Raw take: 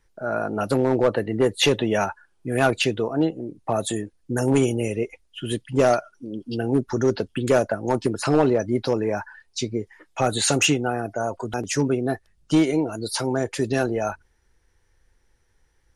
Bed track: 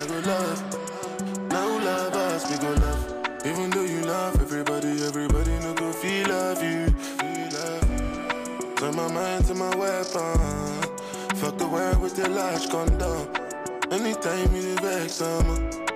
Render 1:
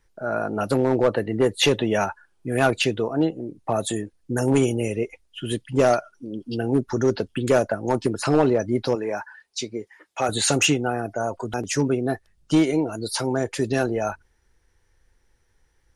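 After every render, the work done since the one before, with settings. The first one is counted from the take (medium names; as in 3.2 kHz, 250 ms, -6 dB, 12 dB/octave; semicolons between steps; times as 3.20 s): 8.95–10.29 s: high-pass 410 Hz 6 dB/octave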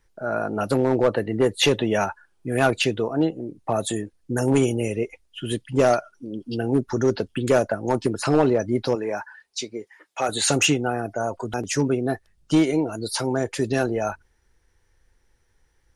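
9.61–10.42 s: bass shelf 170 Hz -10 dB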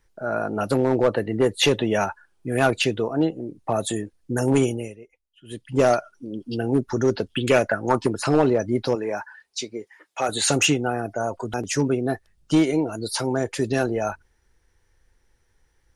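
4.62–5.79 s: dip -19.5 dB, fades 0.35 s; 7.30–8.11 s: peaking EQ 3.8 kHz -> 880 Hz +12 dB 0.67 oct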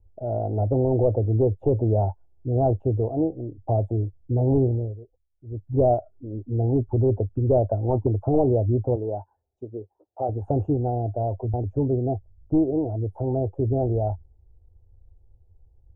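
elliptic low-pass 750 Hz, stop band 60 dB; resonant low shelf 130 Hz +10 dB, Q 3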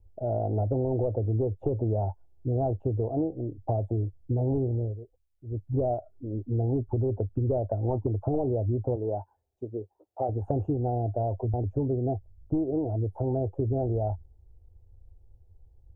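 compression, threshold -24 dBFS, peak gain reduction 9 dB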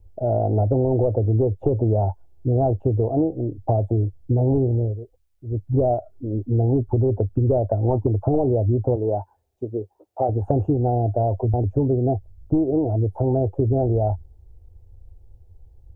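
trim +7.5 dB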